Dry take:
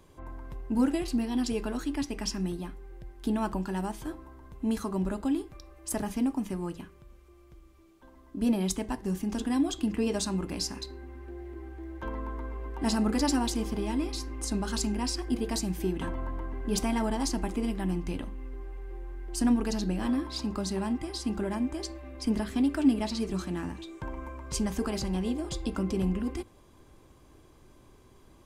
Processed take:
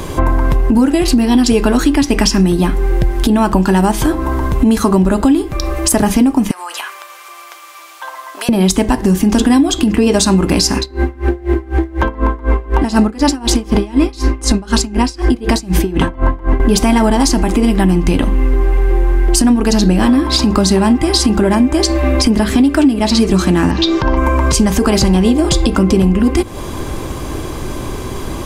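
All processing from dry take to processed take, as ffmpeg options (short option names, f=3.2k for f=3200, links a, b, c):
-filter_complex "[0:a]asettb=1/sr,asplit=3[a][b][c];[a]atrim=end=6.514[d];[b]atrim=start=6.51:end=8.49,asetpts=PTS-STARTPTS,afade=t=in:d=0.004:c=qsin,afade=t=out:st=1.976:d=0.004:c=qsin,highpass=f=790:w=0.5412,highpass=f=790:w=1.3066,acompressor=threshold=-53dB:ratio=16:attack=3.2:release=140:knee=1:detection=peak[e];[c]atrim=start=8.486[f];[d][e]acrossfade=d=0.004:c1=hsin:c2=qsin[g];[g][f]acrossfade=d=0.004:c1=qsin:c2=hsin,asettb=1/sr,asplit=3[h][i][j];[h]atrim=end=10.784[k];[i]atrim=start=10.78:end=16.6,asetpts=PTS-STARTPTS,afade=t=in:d=0.004:c=qsin,afade=t=out:st=5.816:d=0.004:c=qsin,highshelf=f=8.5k:g=-8,aeval=exprs='val(0)*pow(10,-26*(0.5-0.5*cos(2*PI*4*n/s))/20)':c=same[l];[j]atrim=start=16.596[m];[k][l]acrossfade=d=0.004:c1=hsin:c2=qsin[n];[n][m]acrossfade=d=0.004:c1=qsin:c2=hsin,asettb=1/sr,asplit=3[o][p][q];[o]atrim=end=23.714[r];[p]atrim=start=23.71:end=24.17,asetpts=PTS-STARTPTS,afade=t=in:d=0.004:c=qsin,afade=t=out:st=0.456:d=0.004:c=qsin,highshelf=f=6.7k:t=q:w=3:g=-11,bandreject=f=2.3k:w=12[s];[q]atrim=start=24.166[t];[r][s]acrossfade=d=0.004:c1=hsin:c2=qsin[u];[u][t]acrossfade=d=0.004:c1=qsin:c2=hsin,acompressor=threshold=-42dB:ratio=10,alimiter=level_in=35dB:limit=-1dB:release=50:level=0:latency=1,volume=-1dB"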